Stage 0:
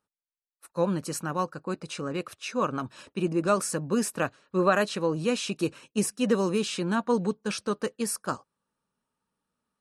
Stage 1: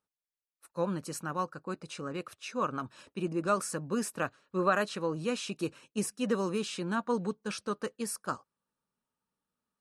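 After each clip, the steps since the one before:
dynamic equaliser 1,300 Hz, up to +4 dB, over −42 dBFS, Q 2
level −6 dB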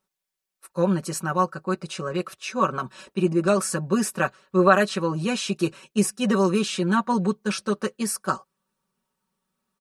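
comb filter 5.3 ms, depth 84%
level +7 dB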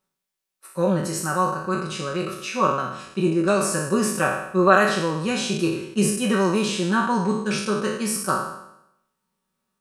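peak hold with a decay on every bin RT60 0.81 s
level −1 dB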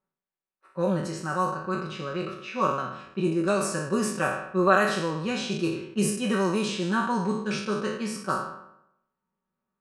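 low-pass that shuts in the quiet parts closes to 1,700 Hz, open at −15.5 dBFS
level −4.5 dB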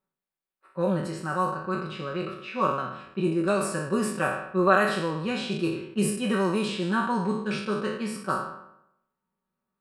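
parametric band 6,200 Hz −11.5 dB 0.36 octaves

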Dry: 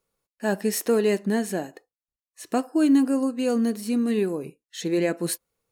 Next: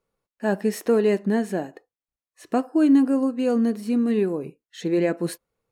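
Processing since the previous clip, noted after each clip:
high-shelf EQ 3,500 Hz −12 dB
level +2 dB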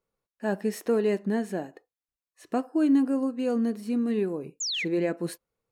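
sound drawn into the spectrogram fall, 0:04.60–0:04.85, 1,900–7,500 Hz −25 dBFS
level −5 dB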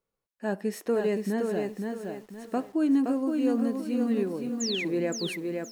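feedback echo at a low word length 519 ms, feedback 35%, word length 9 bits, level −4 dB
level −2 dB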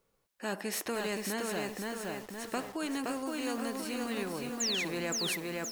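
every bin compressed towards the loudest bin 2 to 1
level −5 dB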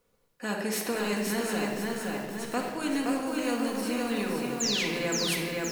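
rectangular room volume 1,600 cubic metres, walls mixed, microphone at 1.9 metres
level +1.5 dB

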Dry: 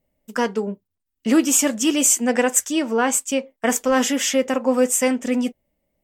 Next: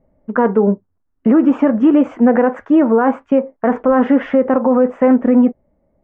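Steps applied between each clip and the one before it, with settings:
low-pass filter 1,400 Hz 24 dB per octave
in parallel at 0 dB: speech leveller within 5 dB 2 s
on the sum: brickwall limiter −11 dBFS, peak gain reduction 10 dB
level +6.5 dB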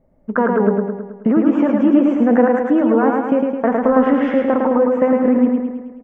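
downward compressor, threshold −12 dBFS, peak gain reduction 5 dB
on a send: repeating echo 107 ms, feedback 56%, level −3 dB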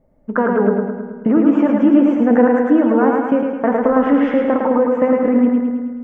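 feedback delay network reverb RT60 1.8 s, low-frequency decay 1.4×, high-frequency decay 0.4×, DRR 9.5 dB

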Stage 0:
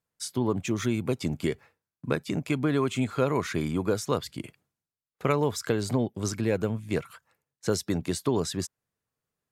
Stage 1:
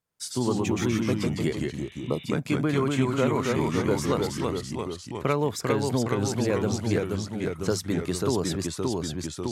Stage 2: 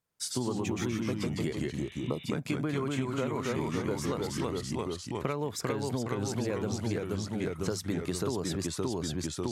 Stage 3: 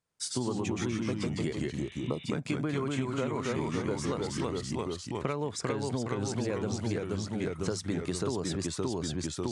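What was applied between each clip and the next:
delay with pitch and tempo change per echo 84 ms, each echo −1 semitone, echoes 3; healed spectral selection 0:01.79–0:02.22, 1,300–3,900 Hz both
downward compressor, threshold −28 dBFS, peak gain reduction 9.5 dB
downsampling to 22,050 Hz

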